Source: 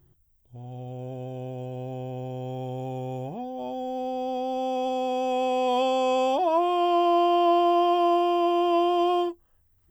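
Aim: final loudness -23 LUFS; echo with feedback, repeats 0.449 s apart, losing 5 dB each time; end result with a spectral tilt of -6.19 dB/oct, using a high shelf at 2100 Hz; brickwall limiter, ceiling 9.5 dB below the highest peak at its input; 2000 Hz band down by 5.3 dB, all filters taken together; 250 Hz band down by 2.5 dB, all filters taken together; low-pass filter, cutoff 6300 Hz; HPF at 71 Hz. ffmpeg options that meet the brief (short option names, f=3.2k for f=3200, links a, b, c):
-af "highpass=71,lowpass=6.3k,equalizer=f=250:t=o:g=-4,equalizer=f=2k:t=o:g=-3.5,highshelf=f=2.1k:g=-5,alimiter=limit=-23.5dB:level=0:latency=1,aecho=1:1:449|898|1347|1796|2245|2694|3143:0.562|0.315|0.176|0.0988|0.0553|0.031|0.0173,volume=7.5dB"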